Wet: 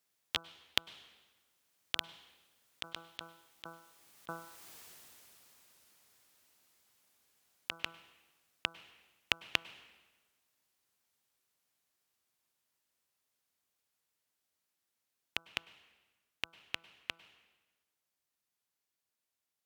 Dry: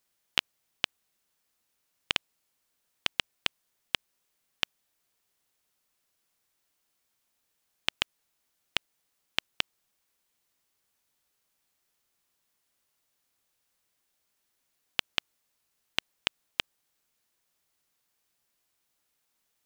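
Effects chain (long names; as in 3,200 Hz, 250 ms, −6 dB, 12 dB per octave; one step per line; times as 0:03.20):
source passing by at 0:04.74, 27 m/s, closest 6.8 metres
high-pass filter 58 Hz
hum removal 166.1 Hz, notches 9
compressor whose output falls as the input rises −51 dBFS, ratio −0.5
dense smooth reverb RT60 1.3 s, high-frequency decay 0.85×, pre-delay 90 ms, DRR 18 dB
level +17.5 dB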